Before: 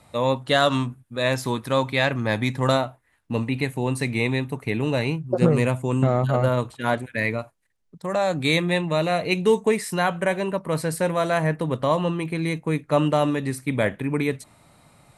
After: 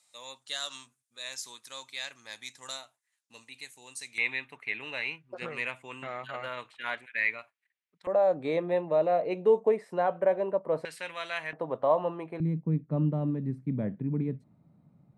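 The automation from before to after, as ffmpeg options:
ffmpeg -i in.wav -af "asetnsamples=nb_out_samples=441:pad=0,asendcmd='4.18 bandpass f 2300;8.07 bandpass f 570;10.85 bandpass f 2700;11.53 bandpass f 690;12.4 bandpass f 180',bandpass=frequency=6500:width_type=q:width=2:csg=0" out.wav

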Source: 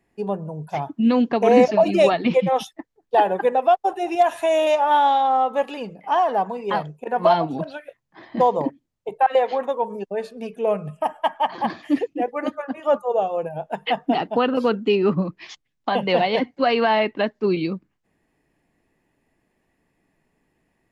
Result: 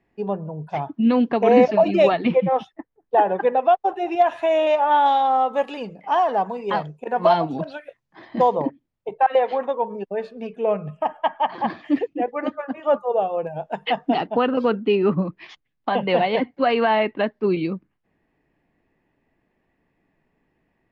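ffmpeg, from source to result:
ffmpeg -i in.wav -af "asetnsamples=nb_out_samples=441:pad=0,asendcmd='2.31 lowpass f 1900;3.29 lowpass f 3300;5.06 lowpass f 6900;8.55 lowpass f 3400;13.47 lowpass f 6100;14.26 lowpass f 3100',lowpass=3600" out.wav

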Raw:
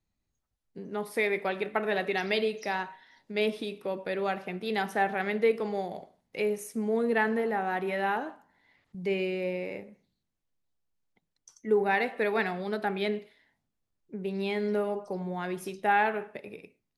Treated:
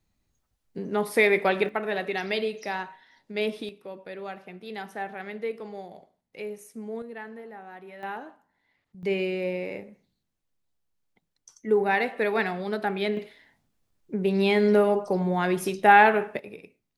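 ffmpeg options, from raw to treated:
ffmpeg -i in.wav -af "asetnsamples=nb_out_samples=441:pad=0,asendcmd='1.69 volume volume 0dB;3.69 volume volume -7dB;7.02 volume volume -13.5dB;8.03 volume volume -6dB;9.03 volume volume 2.5dB;13.17 volume volume 9dB;16.39 volume volume 1.5dB',volume=7.5dB" out.wav

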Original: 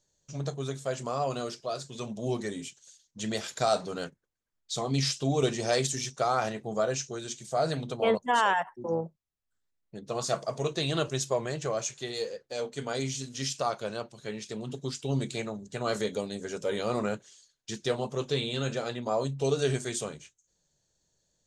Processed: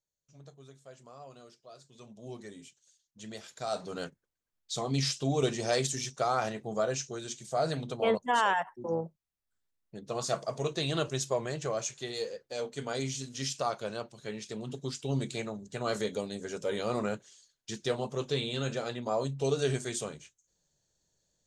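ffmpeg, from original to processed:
ffmpeg -i in.wav -af "volume=-2dB,afade=type=in:start_time=1.61:duration=0.91:silence=0.421697,afade=type=in:start_time=3.61:duration=0.4:silence=0.334965" out.wav

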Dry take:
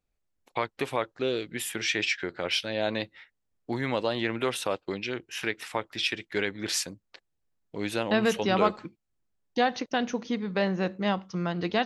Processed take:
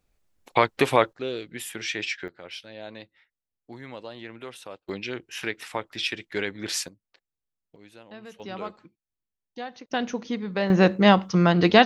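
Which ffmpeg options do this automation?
ffmpeg -i in.wav -af "asetnsamples=nb_out_samples=441:pad=0,asendcmd='1.13 volume volume -2.5dB;2.28 volume volume -11.5dB;4.89 volume volume 0dB;6.88 volume volume -10.5dB;7.76 volume volume -19.5dB;8.4 volume volume -11.5dB;9.9 volume volume 0.5dB;10.7 volume volume 11dB',volume=9.5dB" out.wav

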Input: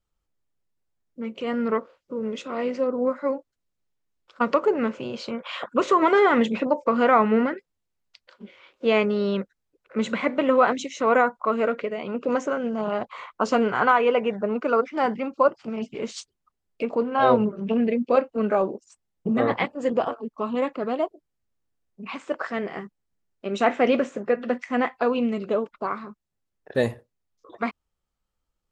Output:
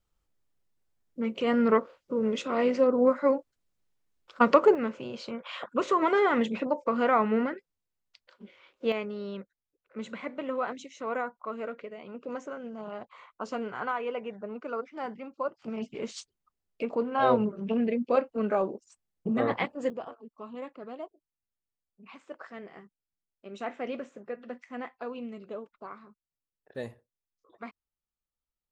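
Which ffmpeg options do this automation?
ffmpeg -i in.wav -af "asetnsamples=nb_out_samples=441:pad=0,asendcmd='4.75 volume volume -6dB;8.92 volume volume -13dB;15.62 volume volume -5dB;19.9 volume volume -15dB',volume=1.5dB" out.wav

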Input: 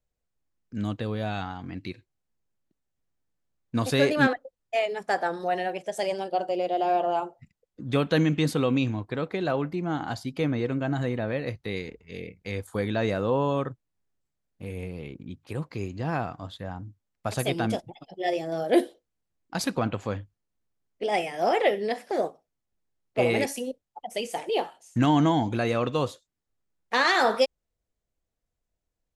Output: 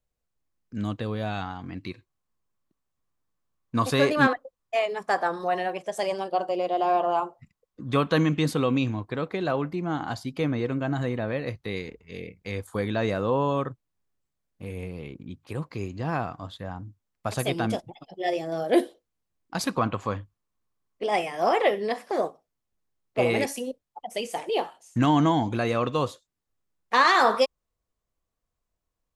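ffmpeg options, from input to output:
ffmpeg -i in.wav -af "asetnsamples=nb_out_samples=441:pad=0,asendcmd='1.82 equalizer g 11.5;8.32 equalizer g 4;19.68 equalizer g 11;22.24 equalizer g 4.5;26.94 equalizer g 10.5',equalizer=frequency=1100:width_type=o:width=0.34:gain=3.5" out.wav

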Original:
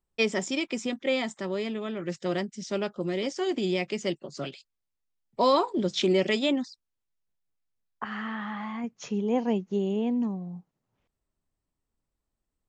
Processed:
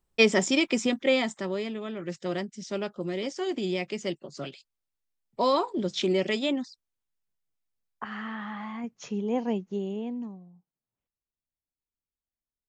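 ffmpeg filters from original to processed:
ffmpeg -i in.wav -af "volume=5.5dB,afade=type=out:start_time=0.76:duration=0.95:silence=0.421697,afade=type=out:start_time=9.5:duration=0.74:silence=0.473151,afade=type=out:start_time=10.24:duration=0.3:silence=0.398107" out.wav

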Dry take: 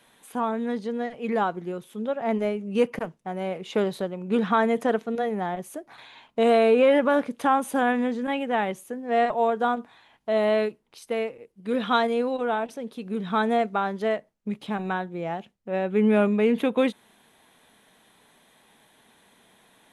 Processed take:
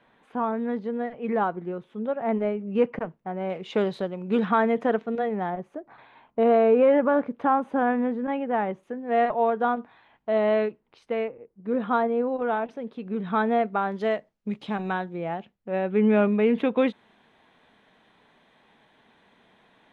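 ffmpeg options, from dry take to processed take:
ffmpeg -i in.wav -af "asetnsamples=nb_out_samples=441:pad=0,asendcmd='3.5 lowpass f 4500;4.45 lowpass f 2700;5.5 lowpass f 1500;8.83 lowpass f 2400;11.28 lowpass f 1300;12.42 lowpass f 2400;13.92 lowpass f 5400;15.16 lowpass f 3100',lowpass=2000" out.wav

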